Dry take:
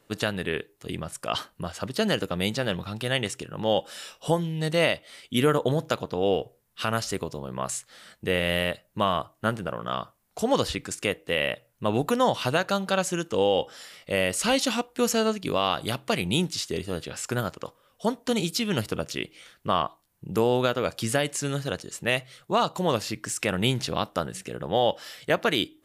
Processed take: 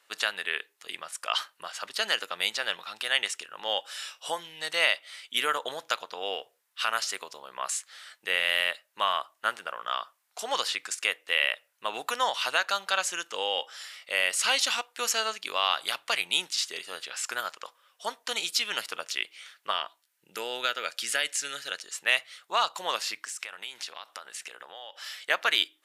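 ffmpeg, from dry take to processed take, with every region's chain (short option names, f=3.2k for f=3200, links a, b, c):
-filter_complex "[0:a]asettb=1/sr,asplit=3[a][b][c];[a]atrim=end=19.714[d];[b]atrim=start=19.71:end=21.83,asetpts=PTS-STARTPTS,afade=t=in:d=0.004:c=qsin,afade=t=out:st=2.116:d=0.004:c=qsin,asuperstop=centerf=1100:order=4:qfactor=6.8,equalizer=f=820:t=o:w=0.71:g=-7.5[e];[c]atrim=start=21.826[f];[d][e]acrossfade=d=0.004:c1=hsin:c2=qsin[g];[g][f]acrossfade=d=0.004:c1=qsin:c2=hsin,asettb=1/sr,asplit=3[h][i][j];[h]atrim=end=23.224[k];[i]atrim=start=23.22:end=25.17,asetpts=PTS-STARTPTS,afade=t=in:d=0.004:c=qsin,afade=t=out:st=1.946:d=0.004:c=qsin,lowshelf=f=180:g=-11.5,acompressor=threshold=-34dB:ratio=8:attack=3.2:release=140:knee=1:detection=peak[l];[j]atrim=start=25.166[m];[k][l]acrossfade=d=0.004:c1=hsin:c2=qsin[n];[n][m]acrossfade=d=0.004:c1=qsin:c2=hsin,highpass=1.2k,highshelf=f=11k:g=-9,volume=3.5dB"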